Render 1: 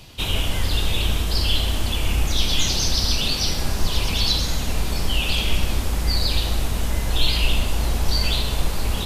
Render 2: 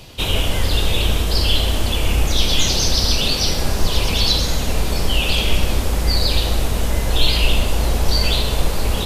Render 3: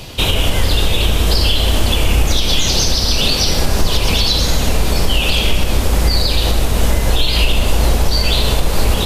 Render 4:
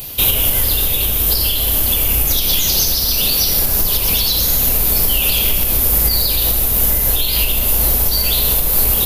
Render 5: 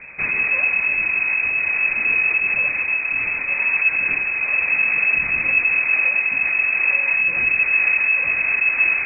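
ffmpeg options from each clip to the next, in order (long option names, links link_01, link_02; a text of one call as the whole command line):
ffmpeg -i in.wav -af "equalizer=frequency=500:width_type=o:width=0.87:gain=5,volume=3.5dB" out.wav
ffmpeg -i in.wav -af "alimiter=limit=-12dB:level=0:latency=1:release=238,volume=8.5dB" out.wav
ffmpeg -i in.wav -af "aemphasis=mode=production:type=50kf,aexciter=amount=7.7:drive=0.8:freq=11000,dynaudnorm=framelen=500:gausssize=3:maxgain=11.5dB,volume=-1dB" out.wav
ffmpeg -i in.wav -af "lowpass=frequency=2200:width_type=q:width=0.5098,lowpass=frequency=2200:width_type=q:width=0.6013,lowpass=frequency=2200:width_type=q:width=0.9,lowpass=frequency=2200:width_type=q:width=2.563,afreqshift=-2600" out.wav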